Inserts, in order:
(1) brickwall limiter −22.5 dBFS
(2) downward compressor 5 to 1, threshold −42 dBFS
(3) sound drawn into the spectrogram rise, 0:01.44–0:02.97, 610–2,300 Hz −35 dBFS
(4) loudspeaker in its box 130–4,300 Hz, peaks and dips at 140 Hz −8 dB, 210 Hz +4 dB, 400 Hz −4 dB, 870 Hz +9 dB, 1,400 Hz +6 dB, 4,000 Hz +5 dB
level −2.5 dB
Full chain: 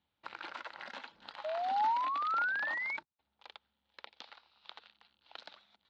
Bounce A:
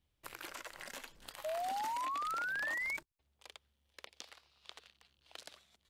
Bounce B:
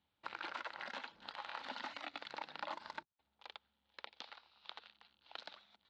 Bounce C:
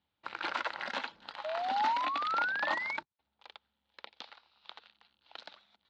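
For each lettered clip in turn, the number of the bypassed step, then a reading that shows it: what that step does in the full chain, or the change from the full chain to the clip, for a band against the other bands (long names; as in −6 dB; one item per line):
4, change in momentary loudness spread −2 LU
3, 4 kHz band +10.5 dB
2, change in crest factor +3.0 dB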